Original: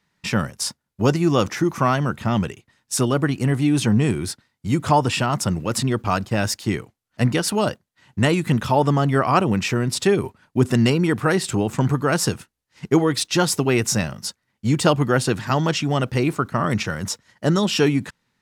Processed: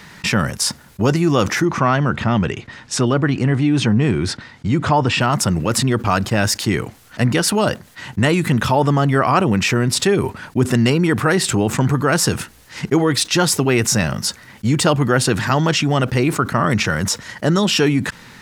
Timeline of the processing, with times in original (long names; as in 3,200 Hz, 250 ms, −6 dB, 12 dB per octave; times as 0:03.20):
0:01.65–0:05.21: high-frequency loss of the air 100 metres
whole clip: parametric band 1,700 Hz +2.5 dB; envelope flattener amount 50%